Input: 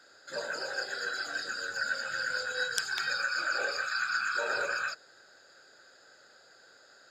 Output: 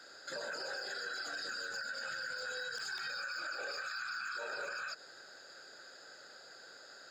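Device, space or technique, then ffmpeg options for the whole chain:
broadcast voice chain: -af "highpass=110,deesser=0.95,acompressor=threshold=-34dB:ratio=6,equalizer=f=4.9k:t=o:w=0.29:g=3,alimiter=level_in=11.5dB:limit=-24dB:level=0:latency=1:release=72,volume=-11.5dB,volume=3dB"

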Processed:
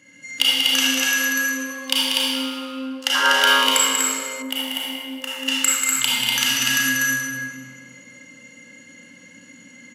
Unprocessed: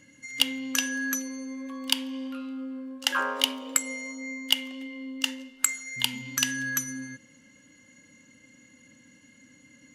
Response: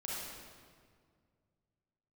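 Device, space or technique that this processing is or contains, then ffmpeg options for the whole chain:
stadium PA: -filter_complex "[0:a]highpass=f=240:p=1,equalizer=f=2.2k:t=o:w=0.77:g=3,aecho=1:1:189.5|244.9:0.501|0.708[a];[1:a]atrim=start_sample=2205[b];[a][b]afir=irnorm=-1:irlink=0,asettb=1/sr,asplit=3[c][d][e];[c]atrim=end=4.424[f];[d]atrim=start=4.42:end=5.48,asetpts=PTS-STARTPTS,afade=t=in:d=0.004:c=qsin,afade=t=out:st=1.056:d=0.004:c=qsin,equalizer=f=4.5k:t=o:w=1.9:g=-13[g];[e]atrim=start=5.476[h];[f][g]acrossfade=d=0.004:c1=hsin:c2=qsin[i];[i][h]acrossfade=d=0.004:c1=qsin:c2=hsin,volume=7dB"

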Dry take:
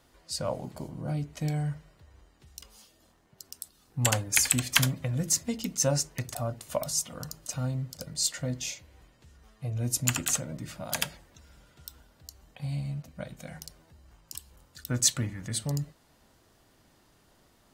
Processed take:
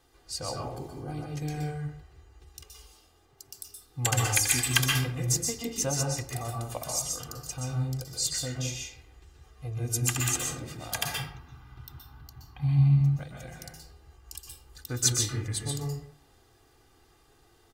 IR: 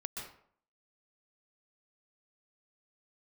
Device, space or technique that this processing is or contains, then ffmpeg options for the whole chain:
microphone above a desk: -filter_complex "[0:a]asettb=1/sr,asplit=3[a][b][c];[a]atrim=end=11.044[d];[b]atrim=start=11.04:end=13.01,asetpts=PTS-STARTPTS,afade=t=in:d=0.004:c=qsin,afade=t=out:st=1.966:d=0.004:c=qsin,equalizer=f=125:t=o:w=1:g=12,equalizer=f=250:t=o:w=1:g=7,equalizer=f=500:t=o:w=1:g=-11,equalizer=f=1k:t=o:w=1:g=12,equalizer=f=8k:t=o:w=1:g=-12[e];[c]atrim=start=13.006[f];[d][e]acrossfade=d=0.004:c1=hsin:c2=qsin[g];[g][f]acrossfade=d=0.004:c1=qsin:c2=hsin,aecho=1:1:2.5:0.71[h];[1:a]atrim=start_sample=2205[i];[h][i]afir=irnorm=-1:irlink=0"

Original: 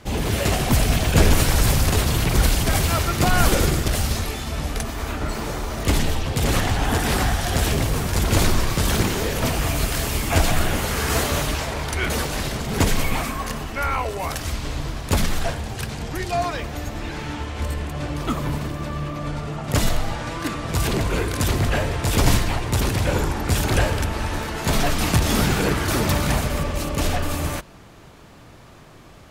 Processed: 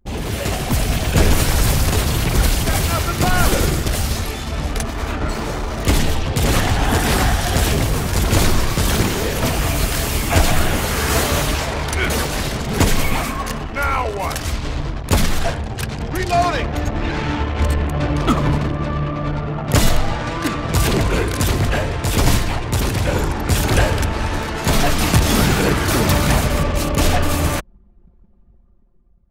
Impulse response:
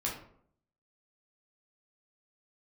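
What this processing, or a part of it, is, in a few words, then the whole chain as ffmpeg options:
voice memo with heavy noise removal: -af "anlmdn=10,dynaudnorm=f=190:g=11:m=11.5dB,volume=-1dB"

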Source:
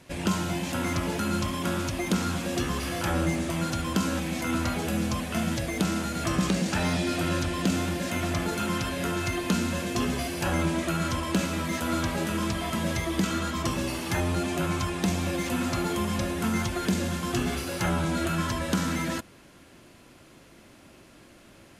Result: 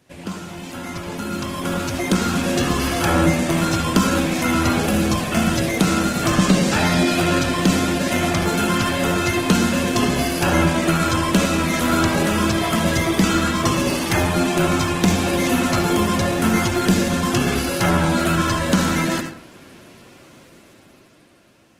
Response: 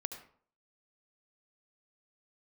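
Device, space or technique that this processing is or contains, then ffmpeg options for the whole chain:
far-field microphone of a smart speaker: -filter_complex "[1:a]atrim=start_sample=2205[a];[0:a][a]afir=irnorm=-1:irlink=0,highpass=82,dynaudnorm=f=400:g=9:m=15.5dB,volume=-2dB" -ar 48000 -c:a libopus -b:a 16k

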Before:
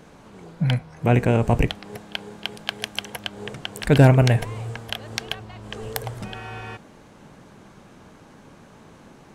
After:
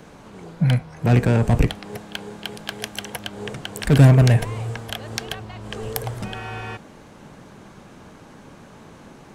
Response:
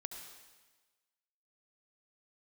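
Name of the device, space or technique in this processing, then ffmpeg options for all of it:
one-band saturation: -filter_complex "[0:a]acrossover=split=250|4900[a][b][c];[b]asoftclip=type=tanh:threshold=-22.5dB[d];[a][d][c]amix=inputs=3:normalize=0,volume=3.5dB"

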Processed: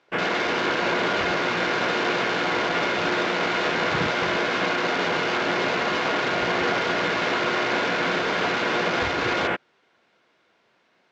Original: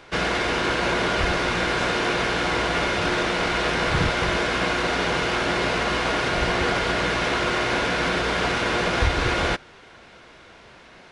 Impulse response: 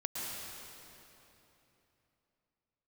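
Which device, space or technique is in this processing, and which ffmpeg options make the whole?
over-cleaned archive recording: -af "highpass=180,lowpass=7.1k,afwtdn=0.0251"

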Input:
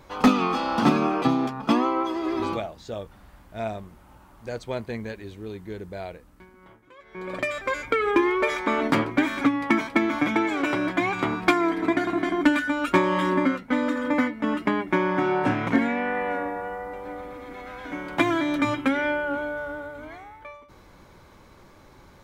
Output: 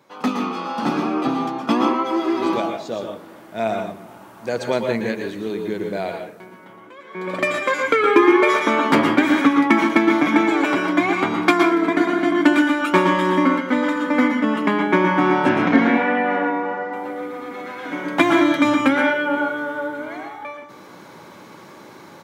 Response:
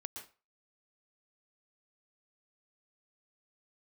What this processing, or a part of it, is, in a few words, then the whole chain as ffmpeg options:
far laptop microphone: -filter_complex "[0:a]asettb=1/sr,asplit=3[a][b][c];[a]atrim=end=15.494[d];[b]atrim=start=15.49:end=16.93,asetpts=PTS-STARTPTS,afade=t=in:d=0.004:c=qsin,afade=t=out:st=1.436:d=0.004:c=qsin,lowpass=f=5.9k:w=0.5412,lowpass=f=5.9k:w=1.3066[e];[c]atrim=start=16.926[f];[d][e]acrossfade=d=0.004:c1=hsin:c2=qsin[g];[g][f]acrossfade=d=0.004:c1=qsin:c2=hsin,asplit=2[h][i];[i]adelay=387,lowpass=f=2k:p=1,volume=-23dB,asplit=2[j][k];[k]adelay=387,lowpass=f=2k:p=1,volume=0.53,asplit=2[l][m];[m]adelay=387,lowpass=f=2k:p=1,volume=0.53,asplit=2[n][o];[o]adelay=387,lowpass=f=2k:p=1,volume=0.53[p];[h][j][l][n][p]amix=inputs=5:normalize=0[q];[1:a]atrim=start_sample=2205[r];[q][r]afir=irnorm=-1:irlink=0,highpass=f=150:w=0.5412,highpass=f=150:w=1.3066,dynaudnorm=f=610:g=5:m=14dB"

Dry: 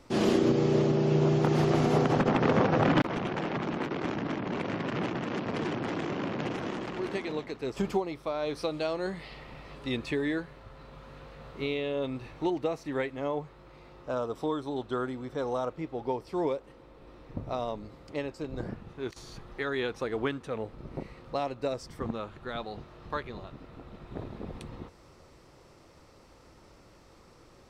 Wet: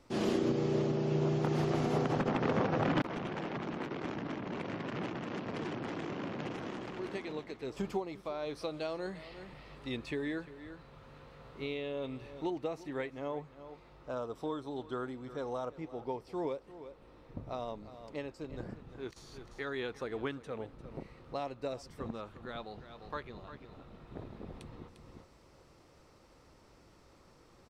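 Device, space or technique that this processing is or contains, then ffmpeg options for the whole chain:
ducked delay: -filter_complex "[0:a]asplit=3[a][b][c];[b]adelay=350,volume=-4dB[d];[c]apad=whole_len=1236636[e];[d][e]sidechaincompress=threshold=-46dB:ratio=5:attack=33:release=462[f];[a][f]amix=inputs=2:normalize=0,volume=-6.5dB"

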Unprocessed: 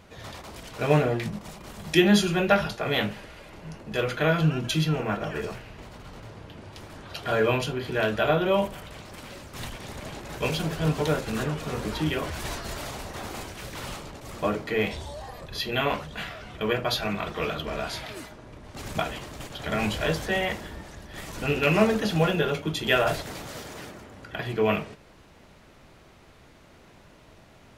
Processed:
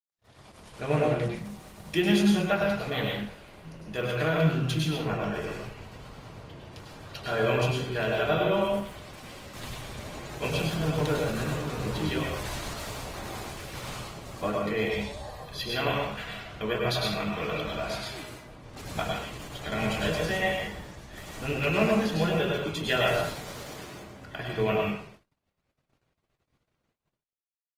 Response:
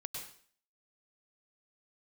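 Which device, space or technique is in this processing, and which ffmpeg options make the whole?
speakerphone in a meeting room: -filter_complex "[1:a]atrim=start_sample=2205[a];[0:a][a]afir=irnorm=-1:irlink=0,asplit=2[b][c];[c]adelay=100,highpass=300,lowpass=3.4k,asoftclip=type=hard:threshold=-18dB,volume=-19dB[d];[b][d]amix=inputs=2:normalize=0,dynaudnorm=f=130:g=11:m=8.5dB,agate=range=-47dB:threshold=-41dB:ratio=16:detection=peak,volume=-8.5dB" -ar 48000 -c:a libopus -b:a 24k

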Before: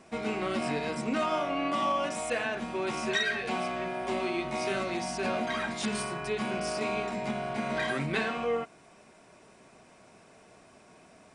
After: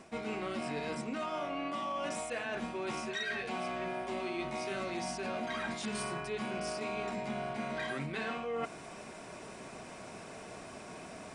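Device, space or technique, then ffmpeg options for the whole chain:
compression on the reversed sound: -af "areverse,acompressor=threshold=-44dB:ratio=8,areverse,volume=9dB"

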